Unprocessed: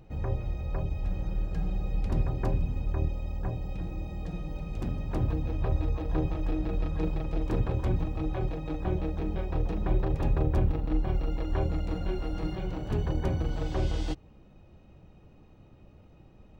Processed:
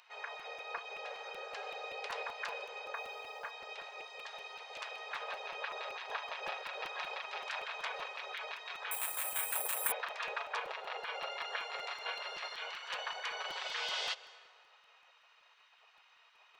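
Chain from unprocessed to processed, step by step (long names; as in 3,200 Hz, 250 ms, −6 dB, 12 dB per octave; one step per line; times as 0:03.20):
low-pass filter 4,100 Hz 12 dB per octave
gate on every frequency bin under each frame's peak −25 dB weak
tilt shelving filter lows −5.5 dB, about 1,400 Hz
0:02.94–0:03.51: log-companded quantiser 8 bits
linear-phase brick-wall high-pass 400 Hz
dense smooth reverb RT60 2.2 s, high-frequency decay 0.55×, pre-delay 115 ms, DRR 16.5 dB
0:08.91–0:09.92: bad sample-rate conversion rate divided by 4×, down none, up zero stuff
regular buffer underruns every 0.19 s, samples 256, repeat, from 0:00.39
level +8 dB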